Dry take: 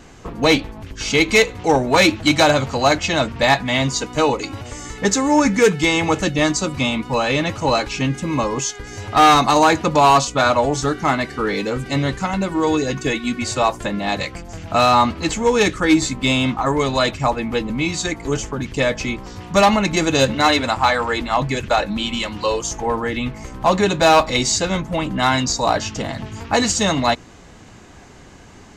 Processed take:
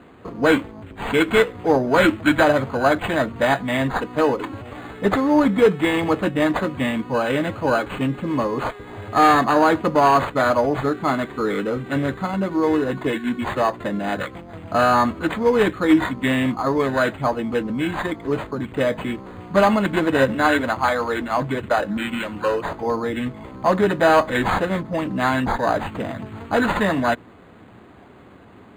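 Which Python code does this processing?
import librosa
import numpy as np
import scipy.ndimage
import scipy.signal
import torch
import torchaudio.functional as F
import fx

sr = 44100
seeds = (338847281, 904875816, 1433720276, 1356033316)

y = fx.cabinet(x, sr, low_hz=110.0, low_slope=12, high_hz=8400.0, hz=(150.0, 850.0, 1700.0, 2500.0, 4200.0), db=(-5, -5, -5, -6, 4))
y = np.interp(np.arange(len(y)), np.arange(len(y))[::8], y[::8])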